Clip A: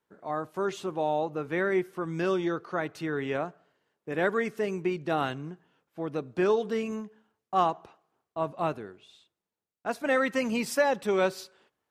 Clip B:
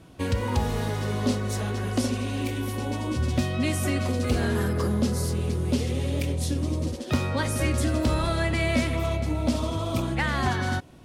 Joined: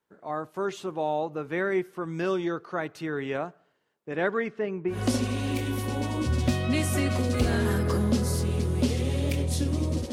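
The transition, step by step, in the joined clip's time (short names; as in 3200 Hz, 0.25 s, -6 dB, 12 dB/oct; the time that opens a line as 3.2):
clip A
4.06–5.03 LPF 7500 Hz -> 1300 Hz
4.95 switch to clip B from 1.85 s, crossfade 0.16 s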